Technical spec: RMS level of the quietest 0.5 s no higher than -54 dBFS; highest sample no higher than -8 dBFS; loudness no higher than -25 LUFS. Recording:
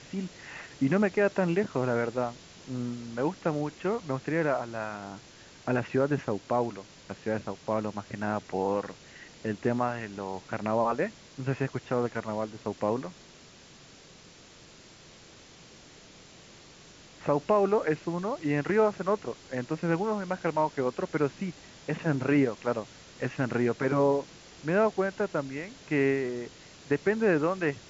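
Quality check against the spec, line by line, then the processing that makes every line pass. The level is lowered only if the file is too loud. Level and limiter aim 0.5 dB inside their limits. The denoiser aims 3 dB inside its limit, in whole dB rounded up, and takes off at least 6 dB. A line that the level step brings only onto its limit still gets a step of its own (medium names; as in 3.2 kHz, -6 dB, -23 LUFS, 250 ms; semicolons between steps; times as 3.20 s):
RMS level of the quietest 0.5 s -53 dBFS: fail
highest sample -12.0 dBFS: pass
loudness -30.0 LUFS: pass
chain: noise reduction 6 dB, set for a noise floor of -53 dBFS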